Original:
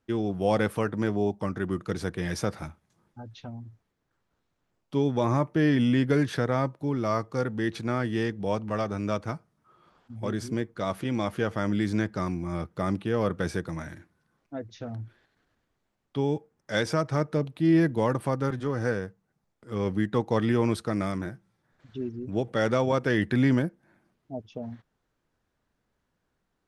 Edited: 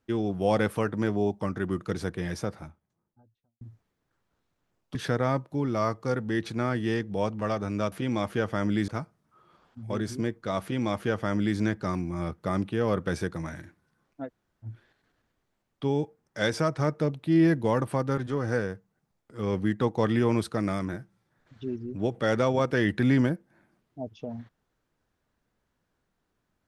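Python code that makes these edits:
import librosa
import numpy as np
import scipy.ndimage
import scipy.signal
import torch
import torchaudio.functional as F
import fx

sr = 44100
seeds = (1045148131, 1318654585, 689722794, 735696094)

y = fx.studio_fade_out(x, sr, start_s=1.83, length_s=1.78)
y = fx.edit(y, sr, fx.cut(start_s=4.95, length_s=1.29),
    fx.duplicate(start_s=10.95, length_s=0.96, to_s=9.21),
    fx.room_tone_fill(start_s=14.6, length_s=0.38, crossfade_s=0.06), tone=tone)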